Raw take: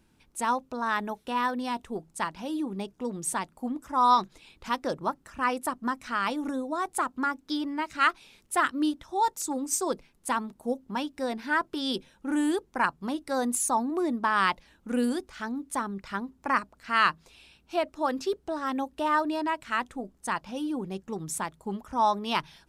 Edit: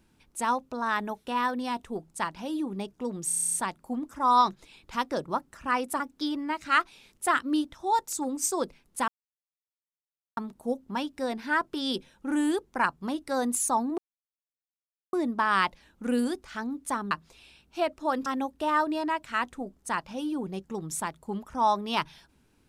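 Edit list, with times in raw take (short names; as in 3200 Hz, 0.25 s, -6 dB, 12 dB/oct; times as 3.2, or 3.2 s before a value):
3.27 stutter 0.03 s, 10 plays
5.73–7.29 cut
10.37 insert silence 1.29 s
13.98 insert silence 1.15 s
15.96–17.07 cut
18.22–18.64 cut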